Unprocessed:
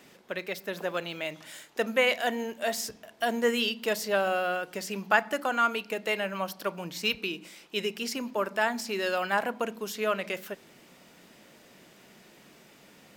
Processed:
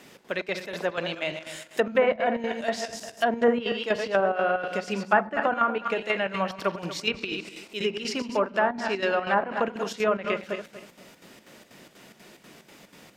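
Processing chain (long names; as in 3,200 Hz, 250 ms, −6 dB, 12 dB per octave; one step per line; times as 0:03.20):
feedback delay that plays each chunk backwards 120 ms, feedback 50%, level −8 dB
square-wave tremolo 4.1 Hz, depth 60%, duty 70%
treble cut that deepens with the level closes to 1,200 Hz, closed at −22.5 dBFS
level +4.5 dB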